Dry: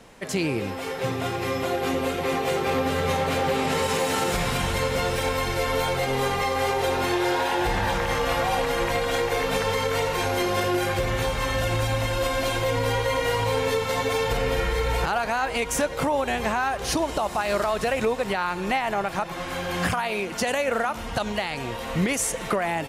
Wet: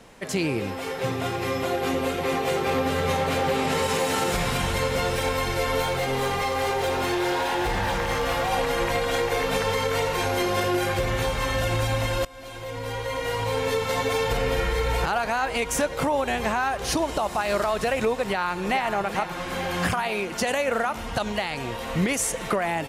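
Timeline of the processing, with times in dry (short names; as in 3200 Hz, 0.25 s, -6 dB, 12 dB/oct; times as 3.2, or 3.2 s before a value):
5.82–8.52 hard clip -20.5 dBFS
12.25–13.89 fade in, from -23.5 dB
18.21–18.81 echo throw 0.44 s, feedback 65%, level -9.5 dB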